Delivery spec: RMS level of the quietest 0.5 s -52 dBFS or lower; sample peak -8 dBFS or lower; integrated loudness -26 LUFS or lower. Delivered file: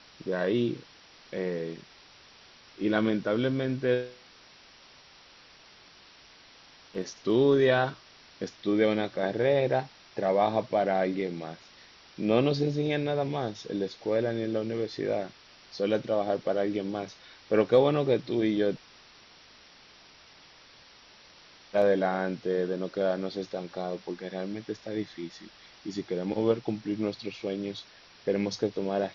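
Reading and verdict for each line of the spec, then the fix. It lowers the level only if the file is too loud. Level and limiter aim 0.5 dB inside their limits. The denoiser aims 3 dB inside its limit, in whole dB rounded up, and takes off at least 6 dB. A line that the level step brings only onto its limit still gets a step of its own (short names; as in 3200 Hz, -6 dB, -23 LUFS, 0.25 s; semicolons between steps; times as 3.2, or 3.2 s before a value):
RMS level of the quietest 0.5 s -55 dBFS: OK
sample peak -10.0 dBFS: OK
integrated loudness -29.0 LUFS: OK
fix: none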